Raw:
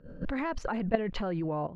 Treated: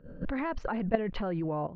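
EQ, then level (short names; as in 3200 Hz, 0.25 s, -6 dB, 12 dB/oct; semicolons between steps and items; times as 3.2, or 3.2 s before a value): Gaussian blur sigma 1.8 samples; 0.0 dB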